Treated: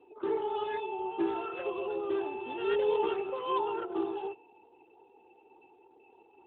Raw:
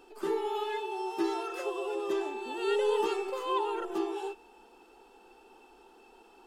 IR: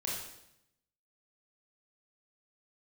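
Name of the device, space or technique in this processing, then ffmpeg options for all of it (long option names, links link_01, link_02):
mobile call with aggressive noise cancelling: -af "highpass=120,afftdn=noise_reduction=31:noise_floor=-54" -ar 8000 -c:a libopencore_amrnb -b:a 12200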